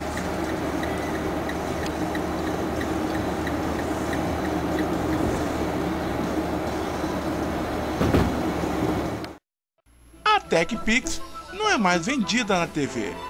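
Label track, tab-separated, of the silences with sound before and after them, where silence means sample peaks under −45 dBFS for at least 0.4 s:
9.380000	9.970000	silence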